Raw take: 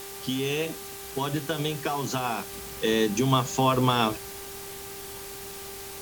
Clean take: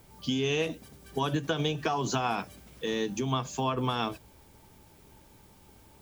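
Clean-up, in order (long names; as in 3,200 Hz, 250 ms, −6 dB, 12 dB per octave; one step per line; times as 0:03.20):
hum removal 394.8 Hz, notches 11
noise reduction from a noise print 17 dB
level 0 dB, from 0:02.53 −7 dB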